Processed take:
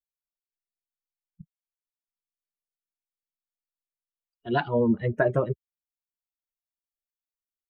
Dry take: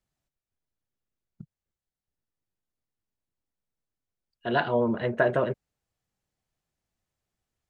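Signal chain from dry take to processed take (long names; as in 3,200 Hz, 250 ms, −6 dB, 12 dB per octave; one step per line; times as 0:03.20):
spectral dynamics exaggerated over time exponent 2
low-shelf EQ 380 Hz +9.5 dB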